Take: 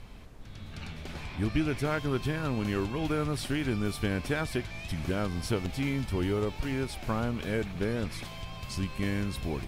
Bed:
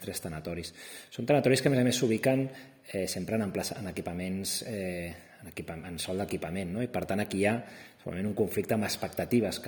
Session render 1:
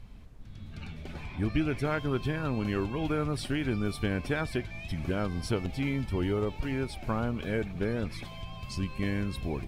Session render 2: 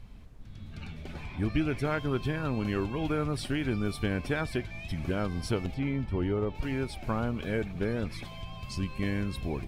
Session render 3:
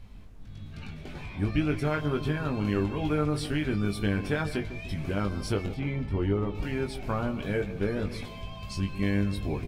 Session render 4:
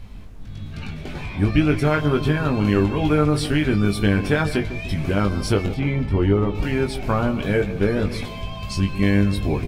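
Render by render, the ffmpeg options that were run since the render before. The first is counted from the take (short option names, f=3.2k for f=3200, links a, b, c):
-af "afftdn=nr=8:nf=-44"
-filter_complex "[0:a]asettb=1/sr,asplit=3[a][b][c];[a]atrim=end=5.744[d];[b]atrim=start=5.74:end=6.55,asetpts=PTS-STARTPTS,afade=t=in:d=0.004:c=qsin,afade=t=out:st=0.806:d=0.004:c=qsin,lowpass=f=1.8k:p=1[e];[c]atrim=start=6.546[f];[d][e]acrossfade=d=0.004:c1=hsin:c2=qsin[g];[g][f]acrossfade=d=0.004:c1=qsin:c2=hsin"
-filter_complex "[0:a]asplit=2[a][b];[b]adelay=20,volume=-5dB[c];[a][c]amix=inputs=2:normalize=0,asplit=2[d][e];[e]adelay=150,lowpass=f=970:p=1,volume=-11.5dB,asplit=2[f][g];[g]adelay=150,lowpass=f=970:p=1,volume=0.51,asplit=2[h][i];[i]adelay=150,lowpass=f=970:p=1,volume=0.51,asplit=2[j][k];[k]adelay=150,lowpass=f=970:p=1,volume=0.51,asplit=2[l][m];[m]adelay=150,lowpass=f=970:p=1,volume=0.51[n];[d][f][h][j][l][n]amix=inputs=6:normalize=0"
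-af "volume=9dB"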